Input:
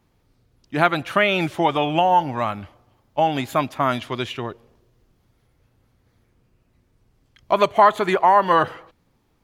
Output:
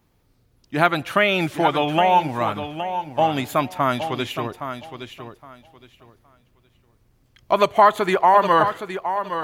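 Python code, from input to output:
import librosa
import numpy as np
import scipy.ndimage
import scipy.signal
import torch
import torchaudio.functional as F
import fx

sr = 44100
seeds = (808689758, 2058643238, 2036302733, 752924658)

y = fx.high_shelf(x, sr, hz=11000.0, db=8.0)
y = fx.echo_feedback(y, sr, ms=816, feedback_pct=21, wet_db=-9.5)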